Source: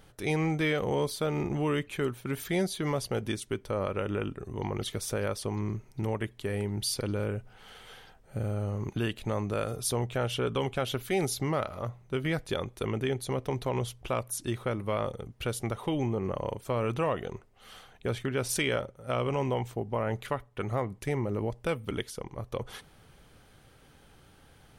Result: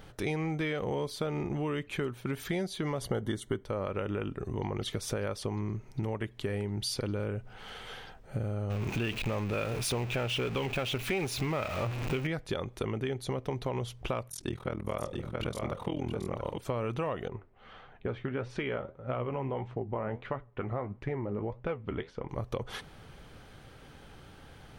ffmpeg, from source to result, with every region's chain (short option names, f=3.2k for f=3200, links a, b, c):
-filter_complex "[0:a]asettb=1/sr,asplit=3[a][b][c];[a]atrim=end=3.014[d];[b]atrim=start=3.01:end=3.64,asetpts=PTS-STARTPTS,afade=t=in:d=0.004:c=qsin,afade=t=out:st=0.626:d=0.004:c=qsin,equalizer=f=5k:t=o:w=0.54:g=-10.5,acontrast=51,asuperstop=centerf=2500:order=12:qfactor=4.5[e];[c]atrim=start=3.636[f];[d][e]acrossfade=d=0.004:c1=hsin:c2=qsin[g];[g][f]acrossfade=d=0.004:c1=qsin:c2=hsin,asettb=1/sr,asplit=3[h][i][j];[h]atrim=end=8.704[k];[i]atrim=start=8.7:end=12.27,asetpts=PTS-STARTPTS,afade=t=in:d=0.004:c=qsin,afade=t=out:st=3.566:d=0.004:c=qsin,aeval=exprs='val(0)+0.5*0.0251*sgn(val(0))':c=same,equalizer=f=2.5k:t=o:w=0.34:g=10.5[l];[j]atrim=start=12.266[m];[k][l]acrossfade=d=0.004:c1=hsin:c2=qsin[n];[n][m]acrossfade=d=0.004:c1=qsin:c2=hsin,asettb=1/sr,asplit=3[o][p][q];[o]atrim=end=14.294[r];[p]atrim=start=14.29:end=16.58,asetpts=PTS-STARTPTS,afade=t=in:d=0.004:c=qsin,afade=t=out:st=2.286:d=0.004:c=qsin,tremolo=f=41:d=0.974,aecho=1:1:556|674:0.112|0.531,atrim=end_sample=100989[s];[q]atrim=start=16.576[t];[r][s]acrossfade=d=0.004:c1=hsin:c2=qsin[u];[u][t]acrossfade=d=0.004:c1=qsin:c2=hsin,asettb=1/sr,asplit=3[v][w][x];[v]atrim=end=17.284[y];[w]atrim=start=17.28:end=22.29,asetpts=PTS-STARTPTS,afade=t=in:d=0.004:c=qsin,afade=t=out:st=5.006:d=0.004:c=qsin,lowpass=2.2k,flanger=delay=6.6:depth=8.2:regen=62:speed=1.6:shape=triangular[z];[x]atrim=start=22.286[aa];[y][z]acrossfade=d=0.004:c1=hsin:c2=qsin[ab];[ab][aa]acrossfade=d=0.004:c1=qsin:c2=hsin,equalizer=f=12k:t=o:w=1.3:g=-9,acompressor=threshold=-37dB:ratio=4,volume=6dB"